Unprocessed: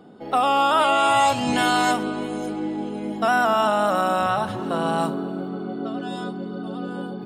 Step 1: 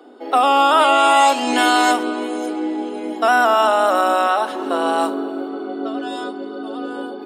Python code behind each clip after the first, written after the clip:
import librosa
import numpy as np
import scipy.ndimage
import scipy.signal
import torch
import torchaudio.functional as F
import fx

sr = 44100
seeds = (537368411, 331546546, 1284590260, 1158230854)

y = scipy.signal.sosfilt(scipy.signal.butter(12, 250.0, 'highpass', fs=sr, output='sos'), x)
y = F.gain(torch.from_numpy(y), 5.0).numpy()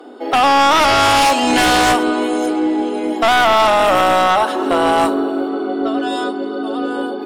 y = fx.fold_sine(x, sr, drive_db=9, ceiling_db=-3.0)
y = F.gain(torch.from_numpy(y), -6.0).numpy()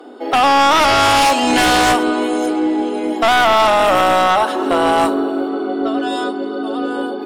y = x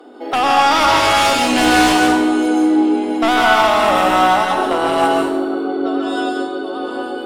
y = fx.rev_plate(x, sr, seeds[0], rt60_s=0.83, hf_ratio=0.9, predelay_ms=115, drr_db=0.0)
y = F.gain(torch.from_numpy(y), -3.5).numpy()